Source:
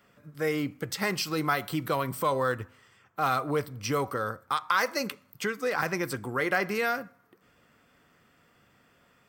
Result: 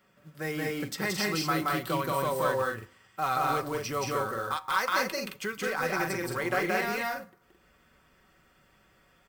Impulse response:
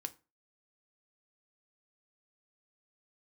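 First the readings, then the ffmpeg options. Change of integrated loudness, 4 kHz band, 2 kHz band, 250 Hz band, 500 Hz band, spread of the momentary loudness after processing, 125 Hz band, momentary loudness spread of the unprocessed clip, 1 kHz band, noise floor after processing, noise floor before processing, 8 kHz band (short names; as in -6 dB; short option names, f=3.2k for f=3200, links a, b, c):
-0.5 dB, +0.5 dB, 0.0 dB, -1.0 dB, -1.0 dB, 6 LU, -1.5 dB, 7 LU, +0.5 dB, -64 dBFS, -64 dBFS, +1.0 dB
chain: -filter_complex "[0:a]acrusher=bits=5:mode=log:mix=0:aa=0.000001,asplit=2[a][b];[1:a]atrim=start_sample=2205[c];[b][c]afir=irnorm=-1:irlink=0,volume=-0.5dB[d];[a][d]amix=inputs=2:normalize=0,asubboost=boost=3.5:cutoff=80,aecho=1:1:5.3:0.41,asplit=2[e][f];[f]aecho=0:1:174.9|218.7:0.891|0.631[g];[e][g]amix=inputs=2:normalize=0,volume=-8.5dB"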